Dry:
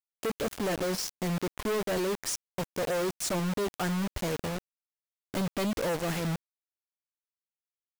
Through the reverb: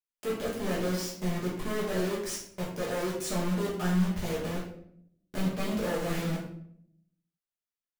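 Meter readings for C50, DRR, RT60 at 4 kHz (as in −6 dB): 4.0 dB, −6.0 dB, 0.45 s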